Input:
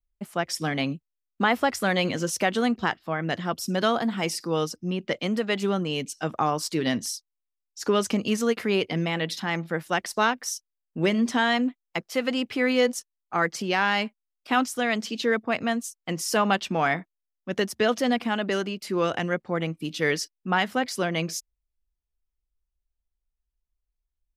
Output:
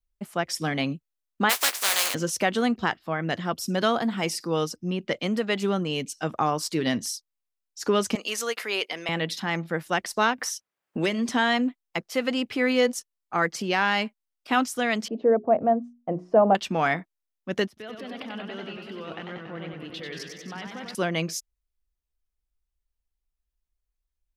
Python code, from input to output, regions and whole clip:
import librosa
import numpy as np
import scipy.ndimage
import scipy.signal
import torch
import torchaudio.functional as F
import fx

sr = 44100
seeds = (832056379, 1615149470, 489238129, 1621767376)

y = fx.spec_flatten(x, sr, power=0.19, at=(1.49, 2.13), fade=0.02)
y = fx.highpass(y, sr, hz=580.0, slope=12, at=(1.49, 2.13), fade=0.02)
y = fx.doubler(y, sr, ms=15.0, db=-8.0, at=(1.49, 2.13), fade=0.02)
y = fx.chain(y, sr, fx.highpass(hz=520.0, slope=12),
    fx.tilt_eq(slope=1.5), at=(8.15, 9.09))
y = fx.chain(y, sr, fx.highpass(hz=260.0, slope=6),
    fx.band_squash(depth_pct=70), at=(10.38, 11.29))
y = fx.chain(y, sr, fx.lowpass_res(hz=660.0, q=3.0),
    fx.hum_notches(base_hz=60, count=7), at=(15.08, 16.55))
y = fx.chain(y, sr, fx.high_shelf_res(hz=4900.0, db=-10.0, q=1.5),
    fx.level_steps(step_db=19),
    fx.echo_warbled(ms=95, feedback_pct=75, rate_hz=2.8, cents=136, wet_db=-5), at=(17.67, 20.95))